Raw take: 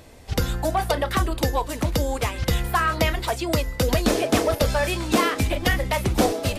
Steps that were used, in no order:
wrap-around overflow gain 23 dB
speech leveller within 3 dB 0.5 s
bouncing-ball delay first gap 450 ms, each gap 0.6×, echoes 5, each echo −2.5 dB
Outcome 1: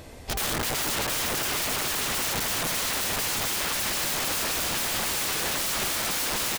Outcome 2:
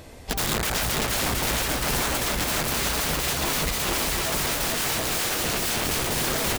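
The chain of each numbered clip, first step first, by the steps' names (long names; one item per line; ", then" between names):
bouncing-ball delay, then speech leveller, then wrap-around overflow
wrap-around overflow, then bouncing-ball delay, then speech leveller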